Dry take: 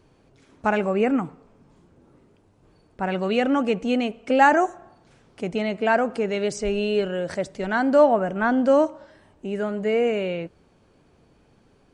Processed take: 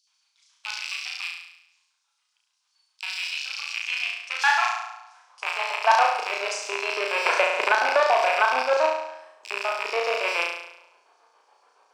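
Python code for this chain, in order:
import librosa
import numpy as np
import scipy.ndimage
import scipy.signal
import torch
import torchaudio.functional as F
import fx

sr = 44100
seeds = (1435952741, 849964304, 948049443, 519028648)

p1 = fx.rattle_buzz(x, sr, strikes_db=-37.0, level_db=-14.0)
p2 = scipy.signal.sosfilt(scipy.signal.butter(2, 180.0, 'highpass', fs=sr, output='sos'), p1)
p3 = fx.high_shelf(p2, sr, hz=4900.0, db=-7.0)
p4 = 10.0 ** (-15.0 / 20.0) * np.tanh(p3 / 10.0 ** (-15.0 / 20.0))
p5 = fx.filter_lfo_highpass(p4, sr, shape='square', hz=7.1, low_hz=960.0, high_hz=5400.0, q=2.9)
p6 = p5 + fx.room_flutter(p5, sr, wall_m=6.0, rt60_s=0.8, dry=0)
p7 = fx.filter_sweep_highpass(p6, sr, from_hz=3600.0, to_hz=410.0, start_s=3.41, end_s=6.54, q=1.4)
p8 = fx.notch(p7, sr, hz=1900.0, q=23.0)
y = fx.band_squash(p8, sr, depth_pct=100, at=(7.26, 8.62))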